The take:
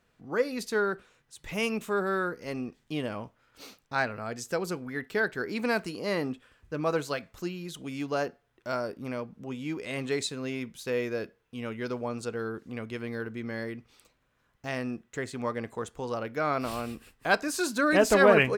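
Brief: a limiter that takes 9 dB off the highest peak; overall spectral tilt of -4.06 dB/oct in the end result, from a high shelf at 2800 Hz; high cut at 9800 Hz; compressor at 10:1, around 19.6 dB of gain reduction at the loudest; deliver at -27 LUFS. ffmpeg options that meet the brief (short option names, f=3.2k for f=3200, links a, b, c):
-af "lowpass=9.8k,highshelf=f=2.8k:g=7,acompressor=threshold=-35dB:ratio=10,volume=15dB,alimiter=limit=-16dB:level=0:latency=1"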